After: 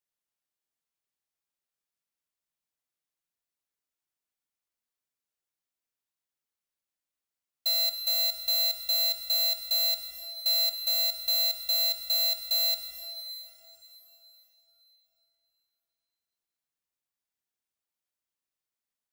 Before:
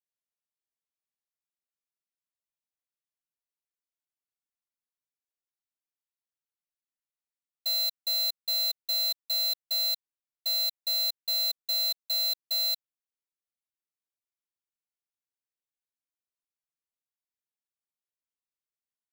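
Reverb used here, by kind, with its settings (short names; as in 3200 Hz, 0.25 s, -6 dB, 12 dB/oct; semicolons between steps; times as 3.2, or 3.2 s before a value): plate-style reverb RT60 4 s, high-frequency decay 0.9×, DRR 7.5 dB; gain +2.5 dB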